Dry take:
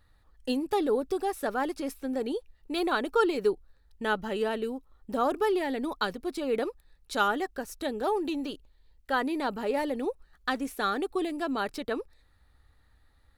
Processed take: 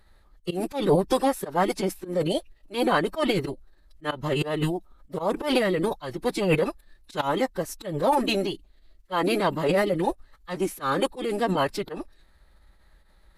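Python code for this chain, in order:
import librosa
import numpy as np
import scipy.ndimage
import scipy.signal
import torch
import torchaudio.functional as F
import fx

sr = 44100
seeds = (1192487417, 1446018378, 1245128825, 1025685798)

y = fx.auto_swell(x, sr, attack_ms=151.0)
y = fx.pitch_keep_formants(y, sr, semitones=-6.5)
y = y * 10.0 ** (7.5 / 20.0)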